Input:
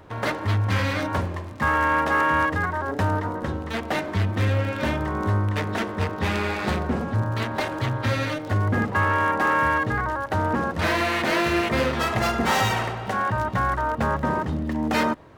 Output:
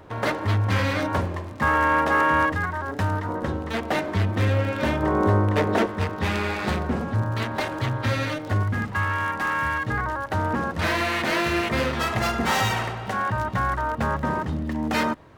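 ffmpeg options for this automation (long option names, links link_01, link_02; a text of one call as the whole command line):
ffmpeg -i in.wav -af "asetnsamples=nb_out_samples=441:pad=0,asendcmd='2.52 equalizer g -4.5;3.29 equalizer g 2;5.03 equalizer g 9;5.86 equalizer g -1;8.63 equalizer g -10.5;9.88 equalizer g -2.5',equalizer=frequency=480:width_type=o:width=2.1:gain=2" out.wav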